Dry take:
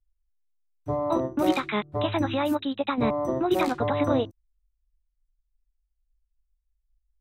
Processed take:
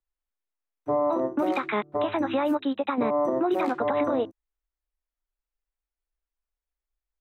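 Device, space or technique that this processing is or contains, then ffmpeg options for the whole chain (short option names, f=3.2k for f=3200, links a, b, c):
DJ mixer with the lows and highs turned down: -filter_complex "[0:a]acrossover=split=210 2400:gain=0.0891 1 0.224[a][b][c];[a][b][c]amix=inputs=3:normalize=0,alimiter=limit=-21.5dB:level=0:latency=1:release=63,volume=4.5dB"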